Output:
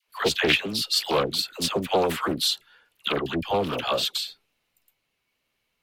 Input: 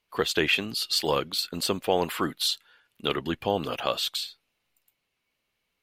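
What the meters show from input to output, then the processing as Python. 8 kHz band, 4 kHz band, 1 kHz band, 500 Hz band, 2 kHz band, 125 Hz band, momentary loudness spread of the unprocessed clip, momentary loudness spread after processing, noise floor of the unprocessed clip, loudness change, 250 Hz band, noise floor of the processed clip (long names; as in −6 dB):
+2.0 dB, +2.5 dB, +3.0 dB, +2.5 dB, +2.5 dB, +2.0 dB, 6 LU, 7 LU, −80 dBFS, +2.5 dB, +2.0 dB, −77 dBFS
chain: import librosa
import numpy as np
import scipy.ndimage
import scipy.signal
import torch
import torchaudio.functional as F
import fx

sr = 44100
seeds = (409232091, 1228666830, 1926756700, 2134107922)

y = fx.dispersion(x, sr, late='lows', ms=82.0, hz=700.0)
y = fx.doppler_dist(y, sr, depth_ms=0.35)
y = F.gain(torch.from_numpy(y), 2.5).numpy()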